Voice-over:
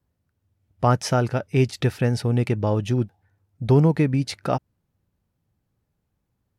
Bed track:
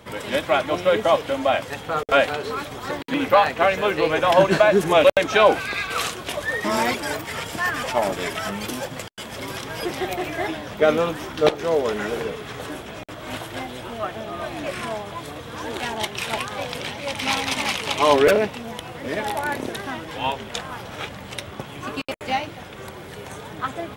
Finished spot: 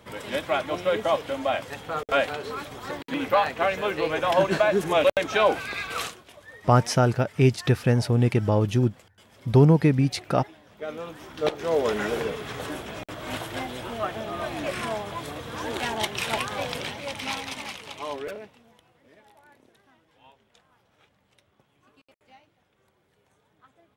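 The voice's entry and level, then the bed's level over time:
5.85 s, +0.5 dB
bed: 0:06.03 −5.5 dB
0:06.27 −21 dB
0:10.64 −21 dB
0:11.86 −1 dB
0:16.71 −1 dB
0:19.24 −30.5 dB

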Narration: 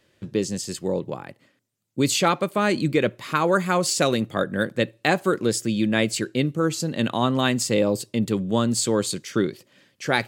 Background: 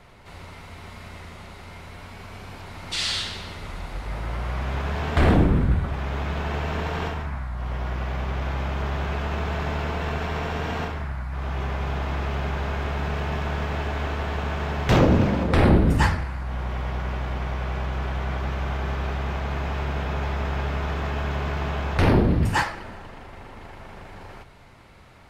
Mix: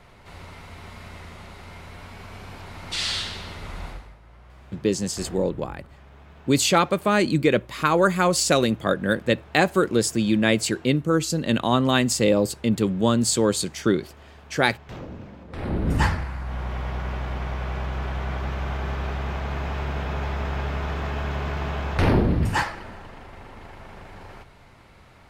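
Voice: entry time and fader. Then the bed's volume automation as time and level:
4.50 s, +1.5 dB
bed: 0:03.89 −0.5 dB
0:04.18 −20.5 dB
0:15.46 −20.5 dB
0:15.96 −1 dB

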